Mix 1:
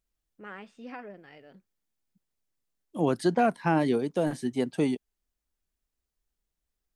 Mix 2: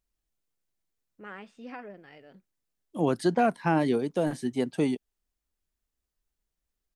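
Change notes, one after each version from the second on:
first voice: entry +0.80 s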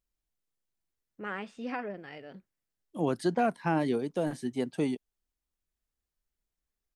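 first voice +6.0 dB; second voice -3.5 dB

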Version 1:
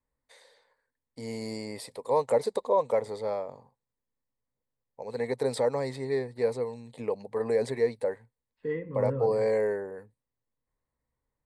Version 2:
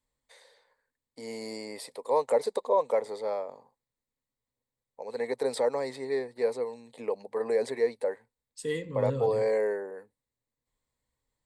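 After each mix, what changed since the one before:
first voice: add high-pass 280 Hz 12 dB/octave; second voice: remove inverse Chebyshev low-pass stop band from 6.2 kHz, stop band 60 dB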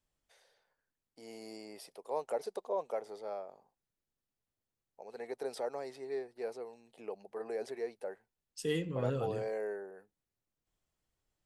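first voice -9.0 dB; master: remove rippled EQ curve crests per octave 1, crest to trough 9 dB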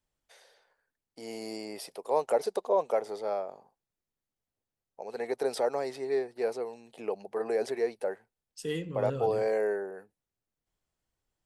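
first voice +9.0 dB

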